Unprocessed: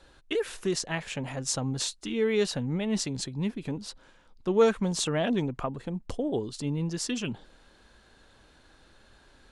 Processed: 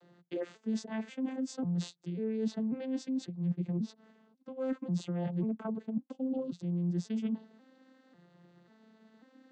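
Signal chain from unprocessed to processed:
vocoder with an arpeggio as carrier major triad, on F3, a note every 542 ms
reversed playback
downward compressor 8 to 1, threshold −35 dBFS, peak gain reduction 15 dB
reversed playback
low-shelf EQ 340 Hz +7 dB

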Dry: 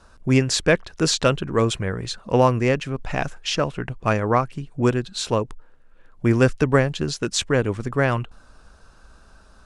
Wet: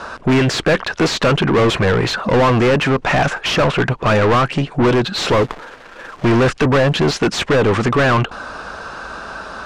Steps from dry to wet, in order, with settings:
0:05.15–0:06.25: log-companded quantiser 6 bits
mid-hump overdrive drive 40 dB, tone 2,100 Hz, clips at −1.5 dBFS
high-frequency loss of the air 50 metres
level −4 dB

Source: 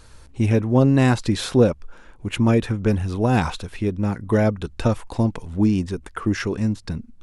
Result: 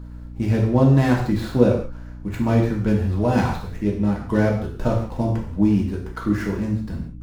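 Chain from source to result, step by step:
running median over 15 samples
reverb whose tail is shaped and stops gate 210 ms falling, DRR −2 dB
mains hum 60 Hz, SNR 16 dB
level −3.5 dB

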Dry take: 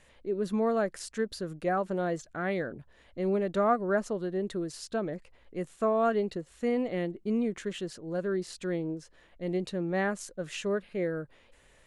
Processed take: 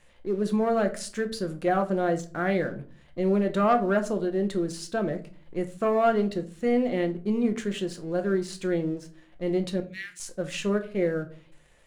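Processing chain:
0:09.80–0:10.20: Butterworth high-pass 2,100 Hz 36 dB per octave
leveller curve on the samples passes 1
rectangular room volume 290 cubic metres, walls furnished, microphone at 0.85 metres

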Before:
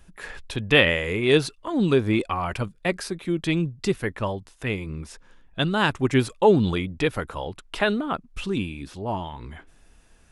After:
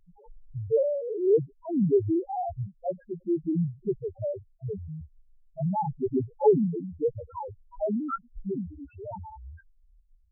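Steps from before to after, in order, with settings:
low-pass filter sweep 830 Hz → 5,200 Hz, 0:07.19–0:10.12
harmonic generator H 5 −24 dB, 8 −23 dB, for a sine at −0.5 dBFS
spectral peaks only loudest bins 1

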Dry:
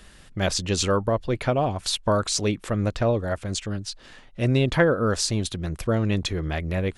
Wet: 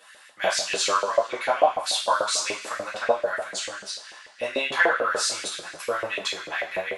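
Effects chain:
coupled-rooms reverb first 0.42 s, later 1.9 s, from −17 dB, DRR −7.5 dB
auto-filter high-pass saw up 6.8 Hz 510–2,200 Hz
level −7 dB

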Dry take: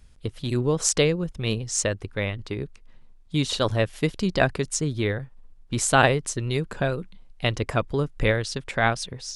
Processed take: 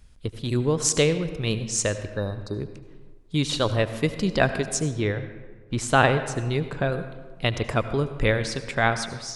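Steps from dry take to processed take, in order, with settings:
0:02.18–0:02.58: healed spectral selection 1,800–3,700 Hz before
0:04.82–0:06.92: high-shelf EQ 5,900 Hz −11.5 dB
convolution reverb RT60 1.4 s, pre-delay 70 ms, DRR 10.5 dB

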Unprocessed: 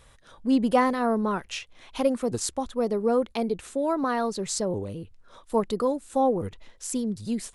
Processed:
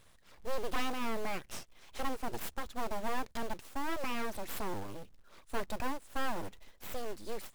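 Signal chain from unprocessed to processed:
phase distortion by the signal itself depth 0.053 ms
full-wave rectification
floating-point word with a short mantissa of 2 bits
soft clipping −18 dBFS, distortion −15 dB
level −5.5 dB

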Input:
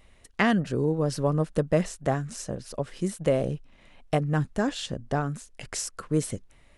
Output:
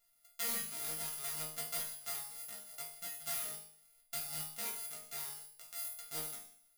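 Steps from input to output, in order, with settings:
samples sorted by size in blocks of 64 samples
in parallel at −6.5 dB: wrap-around overflow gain 17 dB
on the sum: first-order pre-emphasis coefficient 0.97
resonators tuned to a chord D#3 sus4, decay 0.59 s
level +13 dB

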